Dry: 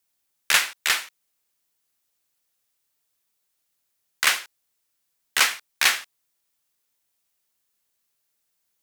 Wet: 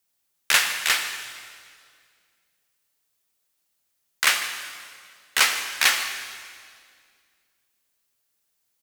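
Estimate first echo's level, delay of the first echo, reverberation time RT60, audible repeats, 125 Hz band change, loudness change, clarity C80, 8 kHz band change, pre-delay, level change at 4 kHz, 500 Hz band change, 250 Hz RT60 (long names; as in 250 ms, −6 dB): −17.0 dB, 150 ms, 2.1 s, 1, can't be measured, 0.0 dB, 8.0 dB, +1.0 dB, 11 ms, +1.0 dB, +1.0 dB, 2.5 s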